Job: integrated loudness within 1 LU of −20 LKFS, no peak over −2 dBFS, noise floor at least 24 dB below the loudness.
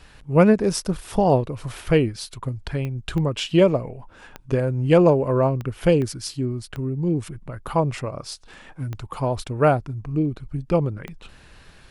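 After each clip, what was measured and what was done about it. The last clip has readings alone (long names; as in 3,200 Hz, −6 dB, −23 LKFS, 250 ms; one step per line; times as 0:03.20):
number of clicks 8; integrated loudness −22.0 LKFS; sample peak −4.5 dBFS; target loudness −20.0 LKFS
→ click removal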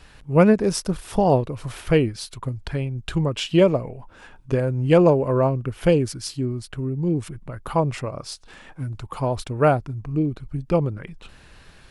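number of clicks 0; integrated loudness −22.0 LKFS; sample peak −4.5 dBFS; target loudness −20.0 LKFS
→ level +2 dB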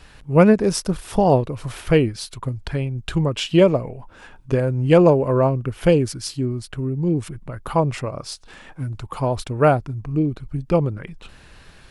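integrated loudness −20.0 LKFS; sample peak −2.5 dBFS; background noise floor −47 dBFS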